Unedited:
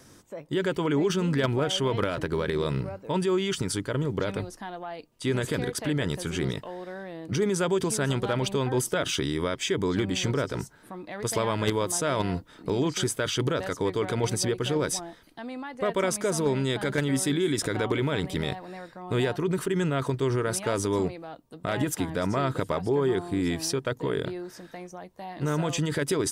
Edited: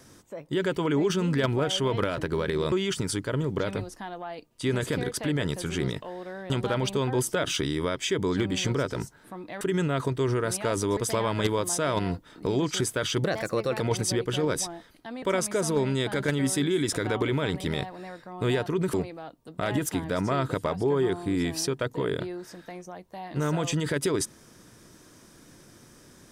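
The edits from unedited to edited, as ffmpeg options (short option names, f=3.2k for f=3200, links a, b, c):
-filter_complex "[0:a]asplit=9[a][b][c][d][e][f][g][h][i];[a]atrim=end=2.722[j];[b]atrim=start=3.328:end=7.112[k];[c]atrim=start=8.088:end=11.202[l];[d]atrim=start=19.628:end=20.992[m];[e]atrim=start=11.198:end=13.474[n];[f]atrim=start=13.47:end=14.13,asetpts=PTS-STARTPTS,asetrate=51597,aresample=44100[o];[g]atrim=start=14.126:end=15.552[p];[h]atrim=start=15.918:end=19.632[q];[i]atrim=start=20.988[r];[j][k]acrossfade=d=0.004:c1=hsin:c2=hsin[s];[s][l]acrossfade=d=0.004:c1=hsin:c2=hsin[t];[t][m]acrossfade=d=0.004:c1=hsin:c2=hsin[u];[u][n]acrossfade=d=0.004:c1=hsin:c2=hsin[v];[v][o]acrossfade=d=0.004:c1=hsin:c2=hsin[w];[w][p]acrossfade=d=0.004:c1=hsin:c2=hsin[x];[x][q]acrossfade=d=0.004:c1=hsin:c2=hsin[y];[y][r]acrossfade=d=0.004:c1=hsin:c2=hsin"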